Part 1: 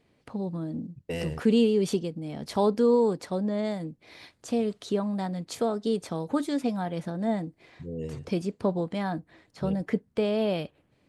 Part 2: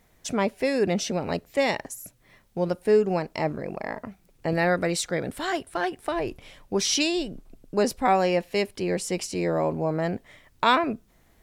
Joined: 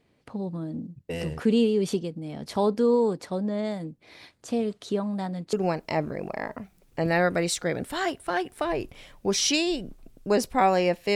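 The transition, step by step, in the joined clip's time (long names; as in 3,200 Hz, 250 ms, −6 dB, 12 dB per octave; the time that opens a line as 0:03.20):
part 1
0:05.53: continue with part 2 from 0:03.00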